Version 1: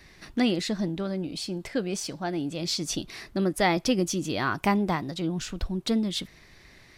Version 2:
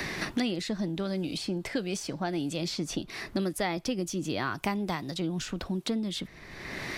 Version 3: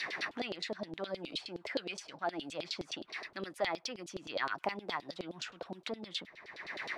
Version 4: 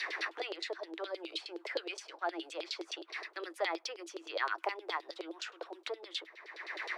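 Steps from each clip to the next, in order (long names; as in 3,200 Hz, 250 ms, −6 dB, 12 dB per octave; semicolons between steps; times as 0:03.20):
multiband upward and downward compressor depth 100%; level −4.5 dB
auto-filter band-pass saw down 9.6 Hz 470–4,400 Hz; level +3.5 dB
Chebyshev high-pass with heavy ripple 320 Hz, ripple 3 dB; level +2 dB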